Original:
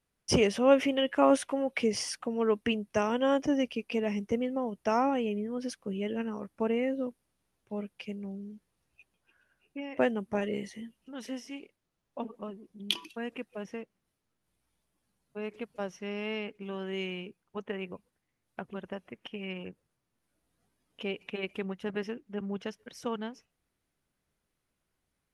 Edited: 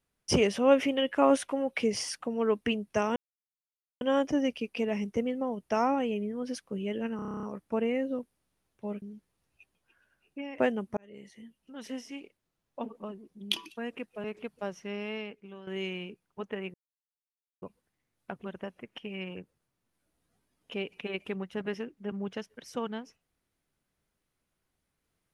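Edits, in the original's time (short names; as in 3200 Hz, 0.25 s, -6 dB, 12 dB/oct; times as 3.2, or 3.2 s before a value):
3.16 insert silence 0.85 s
6.31 stutter 0.03 s, 10 plays
7.9–8.41 cut
10.36–11.35 fade in
13.63–15.41 cut
16.11–16.84 fade out, to -12 dB
17.91 insert silence 0.88 s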